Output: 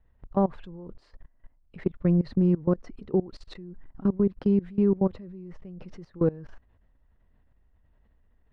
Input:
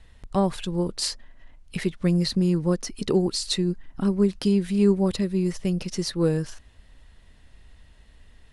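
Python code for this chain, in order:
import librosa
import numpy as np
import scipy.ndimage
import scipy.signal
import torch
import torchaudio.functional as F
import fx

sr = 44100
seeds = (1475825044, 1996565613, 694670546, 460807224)

y = scipy.signal.sosfilt(scipy.signal.butter(2, 1300.0, 'lowpass', fs=sr, output='sos'), x)
y = fx.level_steps(y, sr, step_db=21)
y = F.gain(torch.from_numpy(y), 1.0).numpy()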